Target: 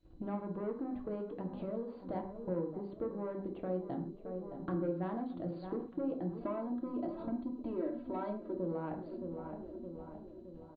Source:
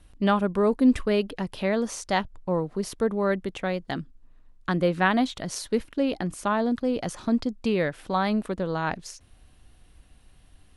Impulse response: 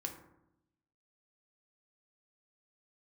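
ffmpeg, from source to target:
-filter_complex "[0:a]agate=range=-19dB:threshold=-51dB:ratio=16:detection=peak,firequalizer=gain_entry='entry(280,0);entry(850,-13);entry(1900,-26)':delay=0.05:min_phase=1,asplit=2[link_01][link_02];[link_02]highpass=frequency=720:poles=1,volume=19dB,asoftclip=type=tanh:threshold=-11dB[link_03];[link_01][link_03]amix=inputs=2:normalize=0,lowpass=frequency=2100:poles=1,volume=-6dB,asettb=1/sr,asplit=3[link_04][link_05][link_06];[link_04]atrim=end=6.374[link_07];[link_05]atrim=start=6.37:end=8.55,asetpts=PTS-STARTPTS,afade=type=in:duration=0.004:curve=qsin,afade=type=out:start_time=2.176:duration=0.004:curve=qsin,aecho=1:1:3.1:0.91,atrim=end_sample=96138[link_08];[link_06]atrim=start=8.546[link_09];[link_07][link_08]acrossfade=duration=0.004:curve1=hsin:curve2=qsin[link_10];[link_10][link_09]acrossfade=duration=0.004:curve1=qsin:curve2=hsin,asplit=2[link_11][link_12];[link_12]adelay=618,lowpass=frequency=1600:poles=1,volume=-17.5dB,asplit=2[link_13][link_14];[link_14]adelay=618,lowpass=frequency=1600:poles=1,volume=0.54,asplit=2[link_15][link_16];[link_16]adelay=618,lowpass=frequency=1600:poles=1,volume=0.54,asplit=2[link_17][link_18];[link_18]adelay=618,lowpass=frequency=1600:poles=1,volume=0.54,asplit=2[link_19][link_20];[link_20]adelay=618,lowpass=frequency=1600:poles=1,volume=0.54[link_21];[link_11][link_13][link_15][link_17][link_19][link_21]amix=inputs=6:normalize=0,acompressor=threshold=-38dB:ratio=4[link_22];[1:a]atrim=start_sample=2205,afade=type=out:start_time=0.19:duration=0.01,atrim=end_sample=8820[link_23];[link_22][link_23]afir=irnorm=-1:irlink=0,volume=1dB" -ar 16000 -c:a mp2 -b:a 48k

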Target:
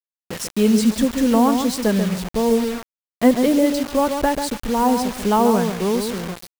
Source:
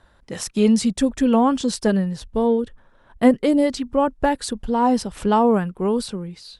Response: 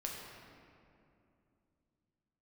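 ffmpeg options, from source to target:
-filter_complex "[0:a]asplit=2[link_01][link_02];[link_02]adelay=138,lowpass=frequency=1600:poles=1,volume=-6dB,asplit=2[link_03][link_04];[link_04]adelay=138,lowpass=frequency=1600:poles=1,volume=0.25,asplit=2[link_05][link_06];[link_06]adelay=138,lowpass=frequency=1600:poles=1,volume=0.25[link_07];[link_01][link_03][link_05][link_07]amix=inputs=4:normalize=0,acrusher=bits=4:mix=0:aa=0.000001"

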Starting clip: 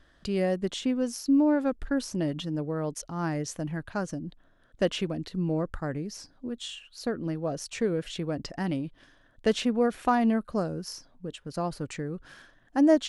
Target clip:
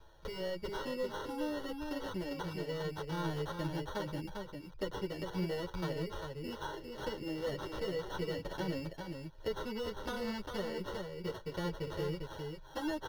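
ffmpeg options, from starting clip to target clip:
ffmpeg -i in.wav -filter_complex "[0:a]acrusher=samples=18:mix=1:aa=0.000001,asoftclip=type=tanh:threshold=-25dB,equalizer=frequency=2100:width=5.9:gain=-7.5,asettb=1/sr,asplit=3[link_01][link_02][link_03];[link_01]atrim=end=1.134[link_04];[link_02]atrim=start=1.13:end=3.25,asetpts=PTS-STARTPTS,afade=type=in:duration=0.004:curve=qsin,afade=type=out:start_time=2.116:duration=0.004:curve=qsin,acompressor=threshold=-33dB:ratio=6[link_05];[link_03]atrim=start=3.246[link_06];[link_04][link_05]acrossfade=duration=0.004:curve1=hsin:curve2=qsin[link_07];[link_07][link_06]acrossfade=duration=0.004:curve1=qsin:curve2=hsin,highshelf=frequency=6400:width_type=q:width=1.5:gain=-6.5,bandreject=frequency=7400:width=5.6,aecho=1:1:2.1:0.71,acrossover=split=210|3200[link_08][link_09][link_10];[link_08]acompressor=threshold=-41dB:ratio=4[link_11];[link_09]acompressor=threshold=-36dB:ratio=4[link_12];[link_10]acompressor=threshold=-53dB:ratio=4[link_13];[link_11][link_12][link_13]amix=inputs=3:normalize=0,aecho=1:1:400:0.562,asplit=2[link_14][link_15];[link_15]adelay=8.8,afreqshift=-0.34[link_16];[link_14][link_16]amix=inputs=2:normalize=1,volume=1.5dB" out.wav

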